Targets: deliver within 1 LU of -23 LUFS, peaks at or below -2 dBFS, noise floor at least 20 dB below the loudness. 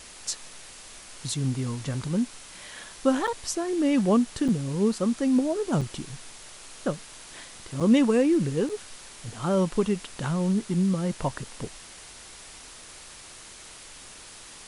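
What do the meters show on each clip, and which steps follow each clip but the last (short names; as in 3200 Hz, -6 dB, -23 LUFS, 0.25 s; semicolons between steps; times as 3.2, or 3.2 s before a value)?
dropouts 5; longest dropout 6.2 ms; noise floor -46 dBFS; noise floor target -47 dBFS; loudness -26.5 LUFS; peak -10.5 dBFS; loudness target -23.0 LUFS
-> interpolate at 3.27/4.48/5.81/7.8/8.69, 6.2 ms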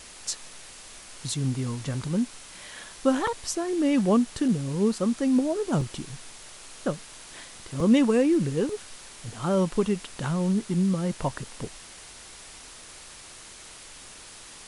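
dropouts 0; noise floor -46 dBFS; noise floor target -47 dBFS
-> denoiser 6 dB, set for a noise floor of -46 dBFS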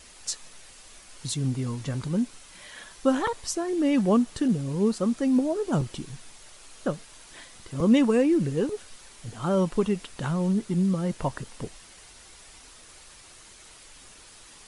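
noise floor -50 dBFS; loudness -26.0 LUFS; peak -10.5 dBFS; loudness target -23.0 LUFS
-> gain +3 dB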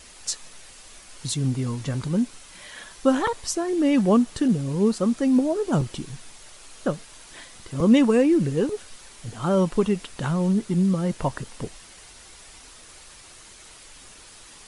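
loudness -23.0 LUFS; peak -7.5 dBFS; noise floor -47 dBFS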